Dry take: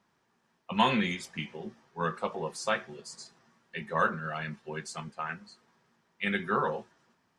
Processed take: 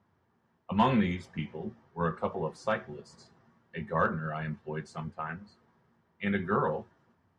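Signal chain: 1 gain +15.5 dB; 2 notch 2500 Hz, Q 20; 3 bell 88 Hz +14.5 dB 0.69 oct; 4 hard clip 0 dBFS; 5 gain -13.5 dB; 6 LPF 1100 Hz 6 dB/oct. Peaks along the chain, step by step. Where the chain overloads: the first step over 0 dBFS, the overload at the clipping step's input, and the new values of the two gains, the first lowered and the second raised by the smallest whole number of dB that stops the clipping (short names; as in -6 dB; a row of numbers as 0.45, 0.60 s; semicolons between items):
+4.5, +4.5, +4.5, 0.0, -13.5, -14.0 dBFS; step 1, 4.5 dB; step 1 +10.5 dB, step 5 -8.5 dB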